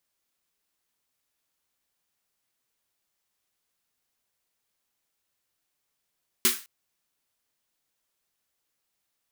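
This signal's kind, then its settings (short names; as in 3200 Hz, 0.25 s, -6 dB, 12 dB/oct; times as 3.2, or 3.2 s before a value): snare drum length 0.21 s, tones 240 Hz, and 370 Hz, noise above 1200 Hz, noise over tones 11 dB, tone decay 0.21 s, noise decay 0.34 s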